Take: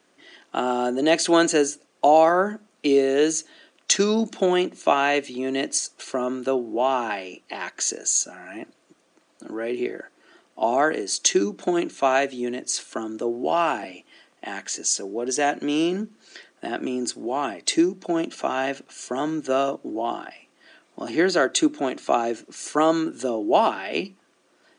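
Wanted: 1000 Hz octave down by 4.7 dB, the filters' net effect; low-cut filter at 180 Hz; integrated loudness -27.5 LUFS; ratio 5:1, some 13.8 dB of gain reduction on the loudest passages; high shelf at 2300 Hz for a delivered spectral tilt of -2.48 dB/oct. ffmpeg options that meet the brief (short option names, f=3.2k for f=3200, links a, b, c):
-af "highpass=180,equalizer=f=1k:t=o:g=-6.5,highshelf=f=2.3k:g=-3,acompressor=threshold=-31dB:ratio=5,volume=7.5dB"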